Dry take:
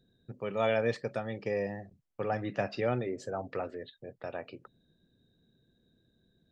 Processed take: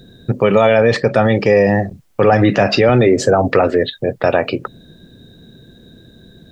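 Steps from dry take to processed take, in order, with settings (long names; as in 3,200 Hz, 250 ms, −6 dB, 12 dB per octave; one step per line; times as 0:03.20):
0:00.61–0:01.25: high-shelf EQ 5,700 Hz −11 dB
boost into a limiter +29 dB
0:02.89–0:03.49: multiband upward and downward compressor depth 40%
level −2 dB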